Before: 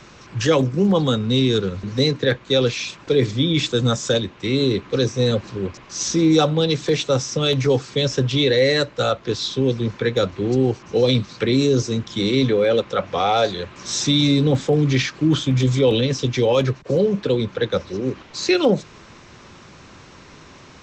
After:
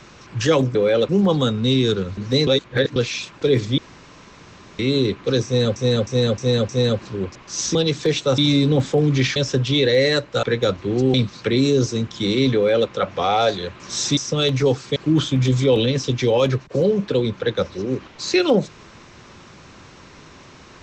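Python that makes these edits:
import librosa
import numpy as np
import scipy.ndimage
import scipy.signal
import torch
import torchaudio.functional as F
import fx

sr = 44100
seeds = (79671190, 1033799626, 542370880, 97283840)

y = fx.edit(x, sr, fx.reverse_span(start_s=2.13, length_s=0.49),
    fx.room_tone_fill(start_s=3.44, length_s=1.01),
    fx.repeat(start_s=5.11, length_s=0.31, count=5),
    fx.cut(start_s=6.17, length_s=0.41),
    fx.swap(start_s=7.21, length_s=0.79, other_s=14.13, other_length_s=0.98),
    fx.cut(start_s=9.07, length_s=0.9),
    fx.cut(start_s=10.68, length_s=0.42),
    fx.duplicate(start_s=12.51, length_s=0.34, to_s=0.75), tone=tone)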